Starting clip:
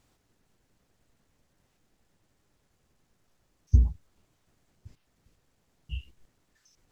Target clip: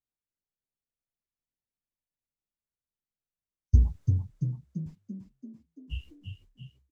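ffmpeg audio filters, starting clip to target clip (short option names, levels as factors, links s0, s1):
-filter_complex "[0:a]agate=range=0.0224:threshold=0.00562:ratio=3:detection=peak,asplit=8[s0][s1][s2][s3][s4][s5][s6][s7];[s1]adelay=338,afreqshift=33,volume=0.501[s8];[s2]adelay=676,afreqshift=66,volume=0.275[s9];[s3]adelay=1014,afreqshift=99,volume=0.151[s10];[s4]adelay=1352,afreqshift=132,volume=0.0832[s11];[s5]adelay=1690,afreqshift=165,volume=0.0457[s12];[s6]adelay=2028,afreqshift=198,volume=0.0251[s13];[s7]adelay=2366,afreqshift=231,volume=0.0138[s14];[s0][s8][s9][s10][s11][s12][s13][s14]amix=inputs=8:normalize=0"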